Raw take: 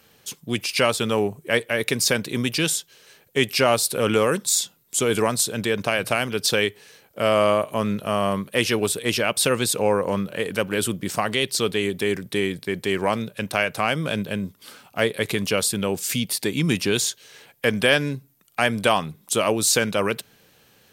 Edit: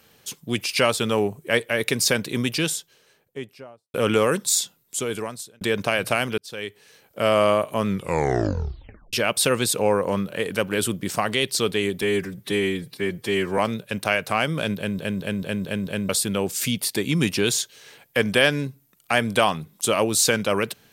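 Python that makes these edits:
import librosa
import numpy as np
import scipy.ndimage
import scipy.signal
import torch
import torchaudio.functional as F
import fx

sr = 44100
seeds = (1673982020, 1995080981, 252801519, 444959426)

y = fx.studio_fade_out(x, sr, start_s=2.36, length_s=1.58)
y = fx.edit(y, sr, fx.fade_out_span(start_s=4.54, length_s=1.07),
    fx.fade_in_span(start_s=6.38, length_s=0.81),
    fx.tape_stop(start_s=7.87, length_s=1.26),
    fx.stretch_span(start_s=12.02, length_s=1.04, factor=1.5),
    fx.stutter_over(start_s=14.25, slice_s=0.22, count=6), tone=tone)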